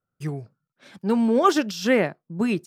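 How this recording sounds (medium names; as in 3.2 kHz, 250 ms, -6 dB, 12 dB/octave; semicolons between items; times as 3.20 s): noise floor -86 dBFS; spectral tilt -4.5 dB/octave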